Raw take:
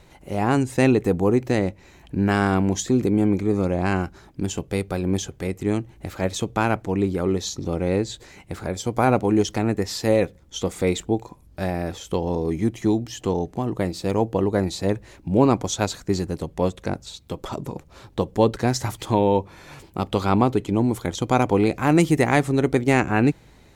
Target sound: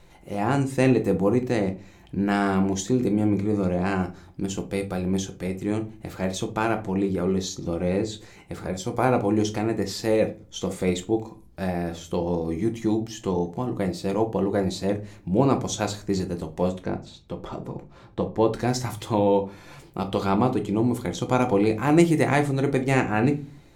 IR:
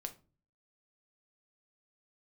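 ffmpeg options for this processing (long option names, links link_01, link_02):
-filter_complex "[0:a]asplit=3[link_01][link_02][link_03];[link_01]afade=type=out:start_time=16.8:duration=0.02[link_04];[link_02]lowpass=frequency=2400:poles=1,afade=type=in:start_time=16.8:duration=0.02,afade=type=out:start_time=18.46:duration=0.02[link_05];[link_03]afade=type=in:start_time=18.46:duration=0.02[link_06];[link_04][link_05][link_06]amix=inputs=3:normalize=0[link_07];[1:a]atrim=start_sample=2205[link_08];[link_07][link_08]afir=irnorm=-1:irlink=0"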